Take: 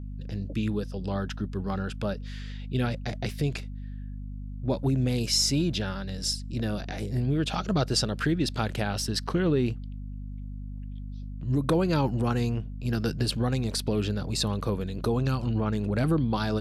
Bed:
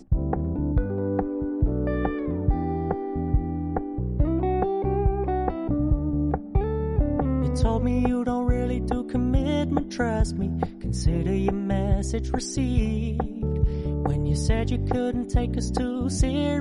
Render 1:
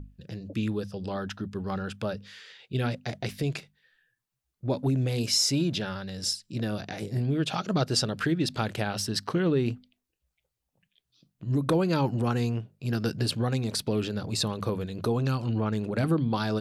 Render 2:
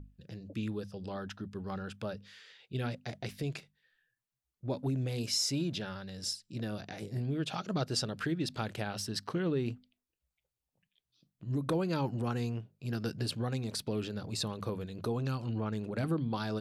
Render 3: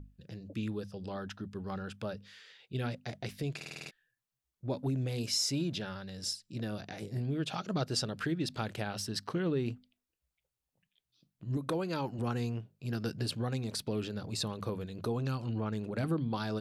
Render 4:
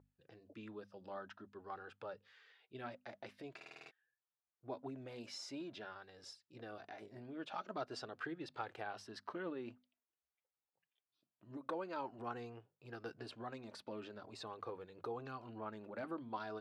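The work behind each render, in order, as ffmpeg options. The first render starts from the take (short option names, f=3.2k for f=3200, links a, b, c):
-af "bandreject=f=50:t=h:w=6,bandreject=f=100:t=h:w=6,bandreject=f=150:t=h:w=6,bandreject=f=200:t=h:w=6,bandreject=f=250:t=h:w=6"
-af "volume=-7dB"
-filter_complex "[0:a]asettb=1/sr,asplit=3[a][b][c];[a]atrim=end=11.574[d];[b]atrim=start=11.57:end=12.19,asetpts=PTS-STARTPTS,afade=t=in:d=0.004:c=qsin,afade=t=out:st=0.616:d=0.004:c=qsin,lowshelf=f=230:g=-7.5[e];[c]atrim=start=12.186[f];[d][e]acrossfade=d=0.004:c1=hsin:c2=qsin[g];[g][f]acrossfade=d=0.004:c1=qsin:c2=hsin,asplit=8[h][i][j][k][l][m][n][o];[h]atrim=end=3.612[p];[i]atrim=start=3.558:end=3.612[q];[j]atrim=start=3.558:end=3.612[r];[k]atrim=start=3.558:end=3.612[s];[l]atrim=start=3.558:end=3.612[t];[m]atrim=start=3.558:end=3.612[u];[n]atrim=start=3.558:end=3.612[v];[o]atrim=start=3.908[w];[p][q]acrossfade=d=0.004:c1=hsin:c2=hsin[x];[x][r]acrossfade=d=0.004:c1=hsin:c2=hsin[y];[y][s]acrossfade=d=0.004:c1=hsin:c2=hsin[z];[z][t]acrossfade=d=0.004:c1=hsin:c2=hsin[aa];[aa][u]acrossfade=d=0.004:c1=hsin:c2=hsin[ab];[ab][v]acrossfade=d=0.004:c1=hsin:c2=hsin[ac];[ac][w]acrossfade=d=0.004:c1=hsin:c2=hsin"
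-af "flanger=delay=2.2:depth=1.3:regen=-39:speed=0.47:shape=triangular,bandpass=f=970:t=q:w=0.89:csg=0"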